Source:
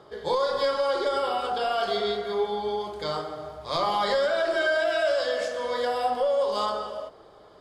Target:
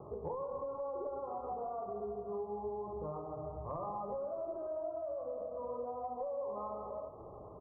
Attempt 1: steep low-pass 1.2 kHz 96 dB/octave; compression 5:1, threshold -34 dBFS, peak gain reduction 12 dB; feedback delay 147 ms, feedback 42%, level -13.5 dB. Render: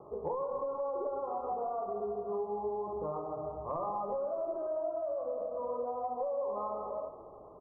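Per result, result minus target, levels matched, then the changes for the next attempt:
125 Hz band -6.5 dB; compression: peak gain reduction -5.5 dB
add after steep low-pass: peaking EQ 90 Hz +11 dB 1.9 oct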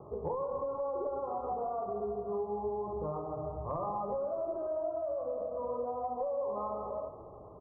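compression: peak gain reduction -5 dB
change: compression 5:1, threshold -40 dBFS, peak gain reduction 17 dB

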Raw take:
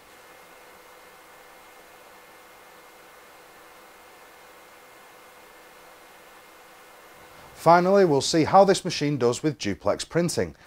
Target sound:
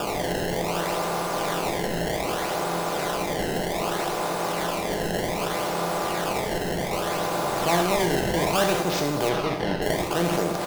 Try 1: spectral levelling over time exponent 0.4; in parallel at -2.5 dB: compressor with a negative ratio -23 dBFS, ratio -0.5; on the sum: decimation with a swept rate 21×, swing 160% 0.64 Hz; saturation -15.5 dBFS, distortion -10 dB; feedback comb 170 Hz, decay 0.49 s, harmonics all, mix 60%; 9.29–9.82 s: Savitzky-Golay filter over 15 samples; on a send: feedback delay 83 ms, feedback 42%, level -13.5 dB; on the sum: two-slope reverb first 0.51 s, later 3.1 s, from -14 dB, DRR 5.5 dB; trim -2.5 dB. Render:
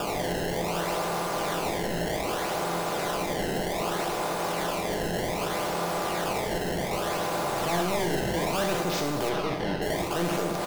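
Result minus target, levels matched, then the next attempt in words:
saturation: distortion +12 dB
spectral levelling over time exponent 0.4; in parallel at -2.5 dB: compressor with a negative ratio -23 dBFS, ratio -0.5; on the sum: decimation with a swept rate 21×, swing 160% 0.64 Hz; saturation -4 dBFS, distortion -23 dB; feedback comb 170 Hz, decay 0.49 s, harmonics all, mix 60%; 9.29–9.82 s: Savitzky-Golay filter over 15 samples; on a send: feedback delay 83 ms, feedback 42%, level -13.5 dB; on the sum: two-slope reverb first 0.51 s, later 3.1 s, from -14 dB, DRR 5.5 dB; trim -2.5 dB

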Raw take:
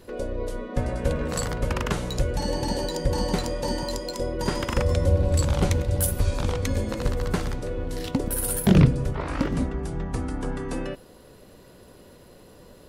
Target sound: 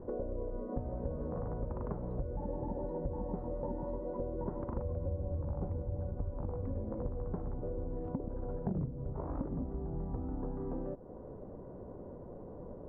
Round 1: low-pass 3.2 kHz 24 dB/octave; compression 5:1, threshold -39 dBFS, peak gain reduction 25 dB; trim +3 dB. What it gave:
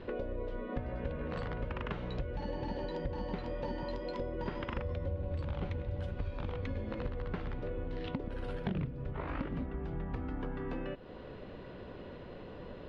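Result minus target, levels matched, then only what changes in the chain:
1 kHz band +2.5 dB
change: low-pass 930 Hz 24 dB/octave

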